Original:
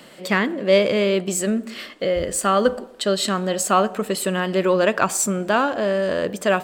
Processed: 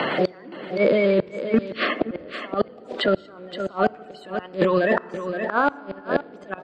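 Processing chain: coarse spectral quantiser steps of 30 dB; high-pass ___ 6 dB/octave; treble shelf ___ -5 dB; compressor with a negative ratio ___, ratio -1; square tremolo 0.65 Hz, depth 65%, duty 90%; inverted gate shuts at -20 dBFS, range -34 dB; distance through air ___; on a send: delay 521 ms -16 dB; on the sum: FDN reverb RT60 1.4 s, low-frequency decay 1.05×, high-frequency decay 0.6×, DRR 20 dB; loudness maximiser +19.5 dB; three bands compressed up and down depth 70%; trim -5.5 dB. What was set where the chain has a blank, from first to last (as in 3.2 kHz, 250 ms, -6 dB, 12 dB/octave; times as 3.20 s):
300 Hz, 3.9 kHz, -28 dBFS, 220 m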